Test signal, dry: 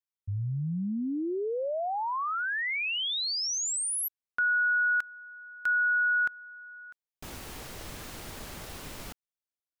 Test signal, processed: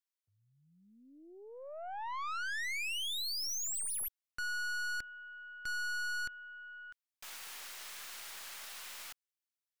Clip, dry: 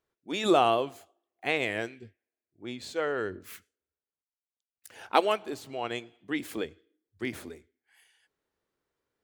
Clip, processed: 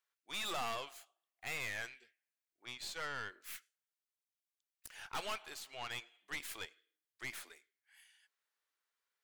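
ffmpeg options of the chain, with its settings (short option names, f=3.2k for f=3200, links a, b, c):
-af "highpass=1.3k,aeval=exprs='(tanh(79.4*val(0)+0.55)-tanh(0.55))/79.4':c=same,volume=1.5dB"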